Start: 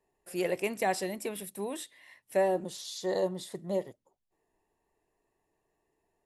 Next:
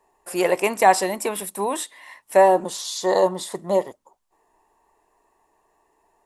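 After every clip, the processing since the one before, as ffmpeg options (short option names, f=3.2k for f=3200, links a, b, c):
-af "equalizer=f=125:t=o:w=1:g=-8,equalizer=f=1k:t=o:w=1:g=12,equalizer=f=8k:t=o:w=1:g=5,volume=8.5dB"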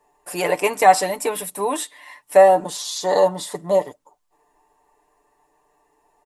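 -af "aecho=1:1:6.8:0.67"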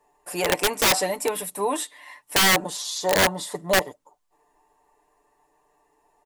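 -af "aeval=exprs='(mod(3.35*val(0)+1,2)-1)/3.35':c=same,volume=-2dB"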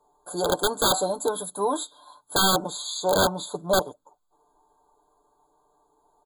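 -af "afftfilt=real='re*eq(mod(floor(b*sr/1024/1600),2),0)':imag='im*eq(mod(floor(b*sr/1024/1600),2),0)':win_size=1024:overlap=0.75"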